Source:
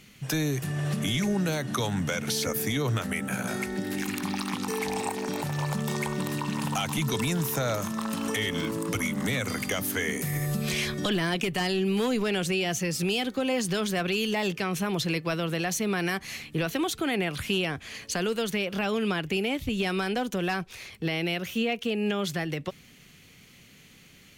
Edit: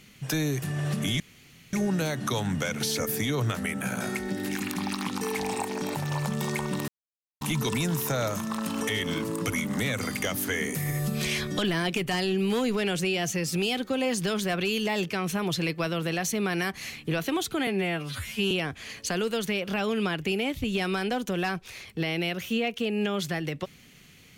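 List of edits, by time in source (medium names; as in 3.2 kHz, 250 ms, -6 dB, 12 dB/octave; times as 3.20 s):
1.20 s: insert room tone 0.53 s
6.35–6.88 s: mute
17.14–17.56 s: stretch 2×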